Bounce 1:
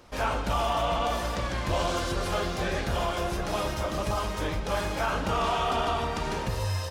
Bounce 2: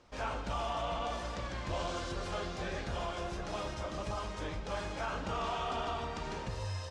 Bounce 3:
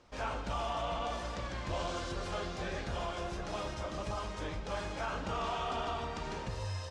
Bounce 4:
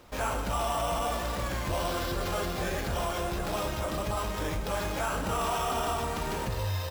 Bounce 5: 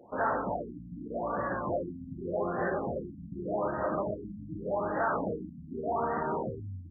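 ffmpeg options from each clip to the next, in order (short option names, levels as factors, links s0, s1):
-af "lowpass=f=8200:w=0.5412,lowpass=f=8200:w=1.3066,volume=0.355"
-af anull
-filter_complex "[0:a]asplit=2[s0][s1];[s1]alimiter=level_in=2.82:limit=0.0631:level=0:latency=1,volume=0.355,volume=1.26[s2];[s0][s2]amix=inputs=2:normalize=0,acrusher=samples=5:mix=1:aa=0.000001,volume=1.19"
-af "highpass=190,lowpass=6200,afftfilt=real='re*lt(b*sr/1024,270*pow(2000/270,0.5+0.5*sin(2*PI*0.85*pts/sr)))':imag='im*lt(b*sr/1024,270*pow(2000/270,0.5+0.5*sin(2*PI*0.85*pts/sr)))':win_size=1024:overlap=0.75,volume=1.41"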